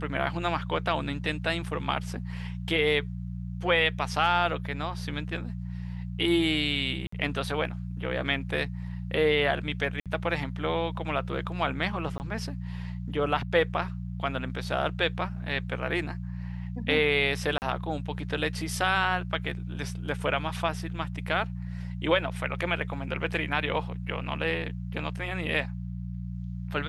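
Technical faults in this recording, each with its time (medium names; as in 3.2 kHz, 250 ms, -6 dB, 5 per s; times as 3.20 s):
hum 60 Hz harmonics 3 -35 dBFS
7.07–7.12 s: dropout 54 ms
10.00–10.06 s: dropout 57 ms
12.18–12.20 s: dropout 19 ms
17.58–17.62 s: dropout 39 ms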